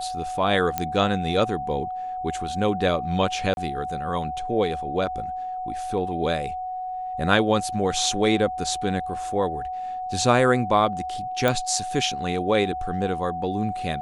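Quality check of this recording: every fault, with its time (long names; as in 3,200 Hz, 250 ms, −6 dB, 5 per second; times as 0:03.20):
whistle 740 Hz −28 dBFS
0:00.78: click −9 dBFS
0:03.54–0:03.57: drop-out 31 ms
0:11.48: click −8 dBFS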